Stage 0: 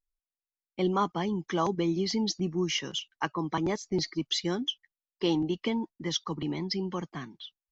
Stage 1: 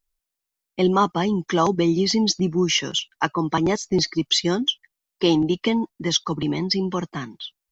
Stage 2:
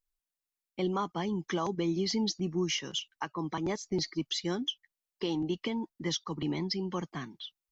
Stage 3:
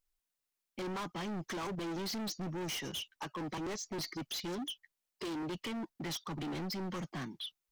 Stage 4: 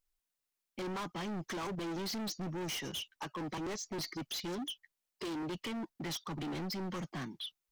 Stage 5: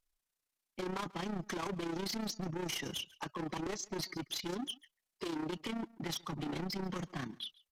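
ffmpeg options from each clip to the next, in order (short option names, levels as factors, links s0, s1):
-af "highshelf=f=5600:g=4,volume=2.66"
-af "alimiter=limit=0.224:level=0:latency=1:release=307,volume=0.376"
-af "asoftclip=type=hard:threshold=0.0106,volume=1.33"
-af anull
-af "tremolo=f=30:d=0.667,aecho=1:1:140:0.0708,aresample=32000,aresample=44100,volume=1.41"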